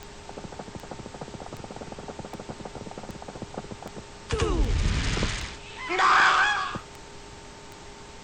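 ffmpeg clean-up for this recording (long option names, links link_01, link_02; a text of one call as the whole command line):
ffmpeg -i in.wav -af "adeclick=threshold=4,bandreject=frequency=407.4:width_type=h:width=4,bandreject=frequency=814.8:width_type=h:width=4,bandreject=frequency=1222.2:width_type=h:width=4,bandreject=frequency=900:width=30,afftdn=noise_reduction=26:noise_floor=-44" out.wav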